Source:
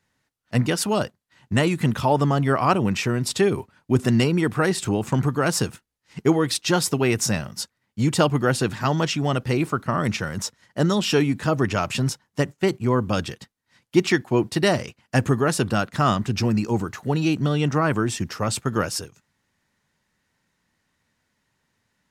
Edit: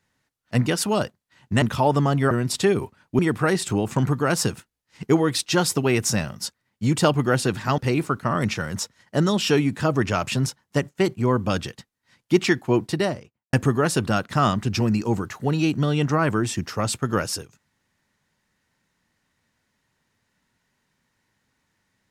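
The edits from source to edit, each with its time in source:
0:01.62–0:01.87: remove
0:02.56–0:03.07: remove
0:03.95–0:04.35: remove
0:08.94–0:09.41: remove
0:14.38–0:15.16: fade out and dull

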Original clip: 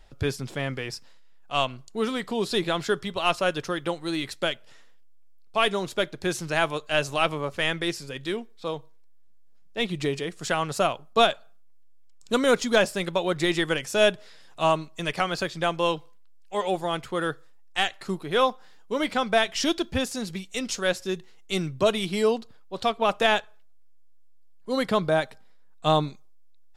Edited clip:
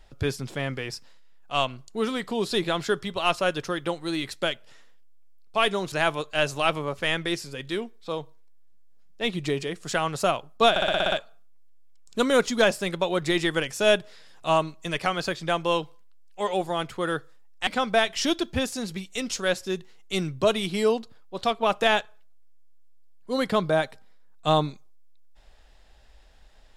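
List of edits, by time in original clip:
0:05.92–0:06.48: remove
0:11.26: stutter 0.06 s, 8 plays
0:17.81–0:19.06: remove

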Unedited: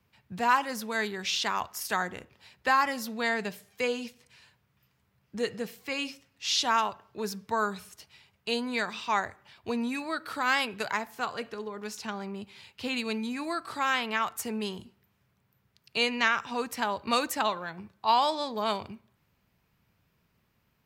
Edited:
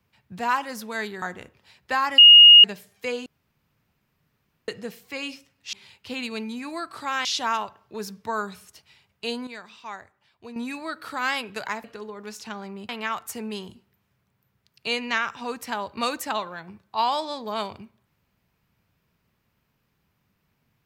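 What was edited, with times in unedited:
0:01.22–0:01.98: remove
0:02.94–0:03.40: beep over 2,860 Hz −6 dBFS
0:04.02–0:05.44: fill with room tone
0:08.71–0:09.80: clip gain −10 dB
0:11.08–0:11.42: remove
0:12.47–0:13.99: move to 0:06.49

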